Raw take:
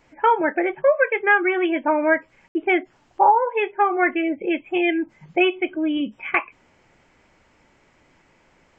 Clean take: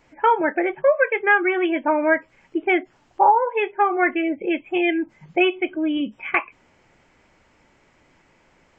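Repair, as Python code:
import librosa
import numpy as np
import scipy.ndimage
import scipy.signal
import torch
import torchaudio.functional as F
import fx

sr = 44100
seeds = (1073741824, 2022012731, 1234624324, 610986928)

y = fx.fix_ambience(x, sr, seeds[0], print_start_s=7.44, print_end_s=7.94, start_s=2.48, end_s=2.55)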